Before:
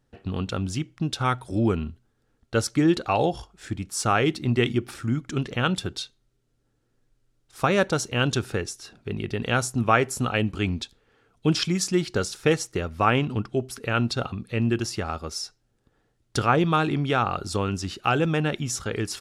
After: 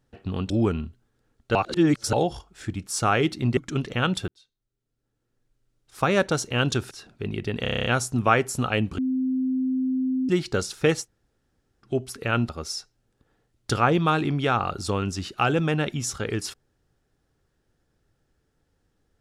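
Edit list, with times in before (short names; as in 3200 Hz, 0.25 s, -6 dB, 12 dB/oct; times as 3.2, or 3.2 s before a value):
0.5–1.53 cut
2.58–3.16 reverse
4.6–5.18 cut
5.89–7.77 fade in
8.52–8.77 cut
9.48 stutter 0.03 s, 9 plays
10.6–11.91 bleep 259 Hz -21.5 dBFS
12.66–13.49 room tone, crossfade 0.10 s
14.11–15.15 cut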